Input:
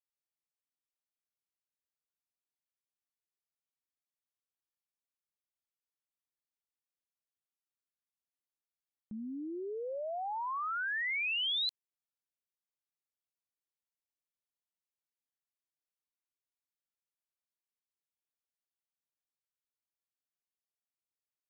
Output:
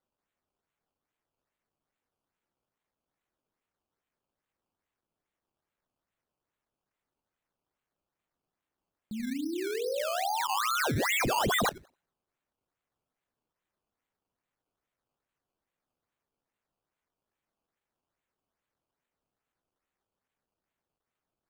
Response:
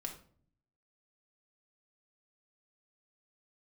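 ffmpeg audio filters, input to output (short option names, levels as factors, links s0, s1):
-filter_complex "[0:a]asplit=2[s0][s1];[1:a]atrim=start_sample=2205,lowpass=2000,adelay=86[s2];[s1][s2]afir=irnorm=-1:irlink=0,volume=0.631[s3];[s0][s3]amix=inputs=2:normalize=0,acrusher=samples=16:mix=1:aa=0.000001:lfo=1:lforange=16:lforate=2.4,volume=1.88"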